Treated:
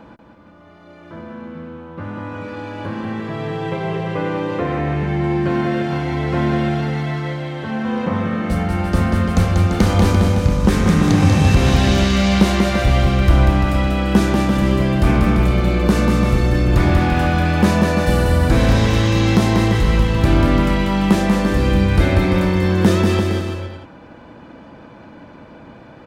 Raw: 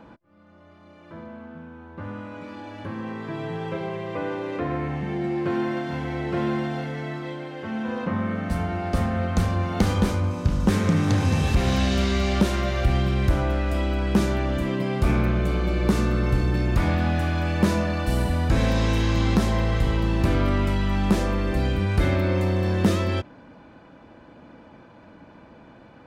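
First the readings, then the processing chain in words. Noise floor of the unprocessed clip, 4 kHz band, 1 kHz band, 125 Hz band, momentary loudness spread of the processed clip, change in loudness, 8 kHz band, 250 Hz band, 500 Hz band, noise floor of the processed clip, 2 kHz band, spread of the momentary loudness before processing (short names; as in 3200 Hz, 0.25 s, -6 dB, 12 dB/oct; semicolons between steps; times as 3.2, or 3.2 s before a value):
-49 dBFS, +7.5 dB, +7.5 dB, +7.5 dB, 11 LU, +7.5 dB, +7.5 dB, +8.0 dB, +7.0 dB, -42 dBFS, +7.5 dB, 11 LU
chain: bouncing-ball echo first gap 0.19 s, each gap 0.8×, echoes 5; gain +5.5 dB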